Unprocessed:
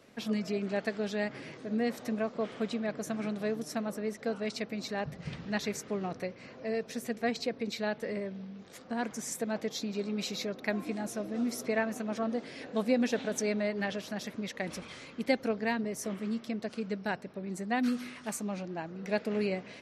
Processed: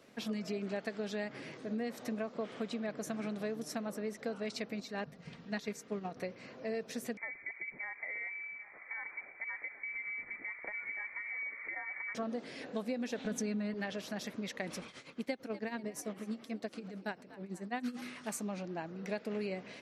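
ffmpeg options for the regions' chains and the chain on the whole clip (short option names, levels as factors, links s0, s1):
-filter_complex "[0:a]asettb=1/sr,asplit=3[s0][s1][s2];[s0]atrim=end=4.804[s3];[s1]atrim=start=4.8:end=6.17,asetpts=PTS-STARTPTS,afade=t=in:d=0.004:c=qsin,afade=t=out:st=1.366:d=0.004:c=qsin,agate=range=0.447:threshold=0.0178:ratio=16:release=100:detection=peak,aecho=1:1:4.3:0.32,atrim=end_sample=60417[s4];[s2]atrim=start=6.166[s5];[s3][s4]acrossfade=d=0.004:c1=hsin:c2=qsin[s6];[s6][s5]acrossfade=d=0.004:c1=qsin:c2=hsin,asettb=1/sr,asplit=3[s7][s8][s9];[s7]atrim=end=7.174[s10];[s8]atrim=start=7.17:end=12.15,asetpts=PTS-STARTPTS,afade=t=in:d=0.004:c=qsin,afade=t=out:st=4.976:d=0.004:c=qsin,acompressor=threshold=0.0178:ratio=12:attack=3.2:release=140:knee=1:detection=peak,aecho=1:1:783:0.15,atrim=end_sample=219618,lowpass=f=2100:t=q:w=0.5098,lowpass=f=2100:t=q:w=0.6013,lowpass=f=2100:t=q:w=0.9,lowpass=f=2100:t=q:w=2.563,afreqshift=-2500[s11];[s9]atrim=start=12.146[s12];[s10][s11]acrossfade=d=0.004:c1=hsin:c2=qsin[s13];[s13][s12]acrossfade=d=0.004:c1=qsin:c2=hsin,asettb=1/sr,asplit=3[s14][s15][s16];[s14]atrim=end=13.254[s17];[s15]atrim=start=13.25:end=13.74,asetpts=PTS-STARTPTS,afade=t=in:d=0.004:c=qsin,afade=t=out:st=0.486:d=0.004:c=qsin,bass=f=250:g=10,treble=f=4000:g=-1,aecho=1:1:4.1:0.5,atrim=end_sample=21609[s18];[s16]atrim=start=13.736[s19];[s17][s18]acrossfade=d=0.004:c1=hsin:c2=qsin[s20];[s20][s19]acrossfade=d=0.004:c1=qsin:c2=hsin,asettb=1/sr,asplit=3[s21][s22][s23];[s21]atrim=end=14.874[s24];[s22]atrim=start=14.87:end=18.02,asetpts=PTS-STARTPTS,afade=t=in:d=0.004:c=qsin,afade=t=out:st=3.146:d=0.004:c=qsin,tremolo=f=9:d=0.82,asplit=5[s25][s26][s27][s28][s29];[s26]adelay=242,afreqshift=61,volume=0.106[s30];[s27]adelay=484,afreqshift=122,volume=0.0507[s31];[s28]adelay=726,afreqshift=183,volume=0.0243[s32];[s29]adelay=968,afreqshift=244,volume=0.0117[s33];[s25][s30][s31][s32][s33]amix=inputs=5:normalize=0,atrim=end_sample=138915[s34];[s23]atrim=start=18.016[s35];[s24][s34]acrossfade=d=0.004:c1=hsin:c2=qsin[s36];[s36][s35]acrossfade=d=0.004:c1=qsin:c2=hsin,equalizer=f=63:t=o:w=0.83:g=-14.5,acompressor=threshold=0.0251:ratio=6,volume=0.841"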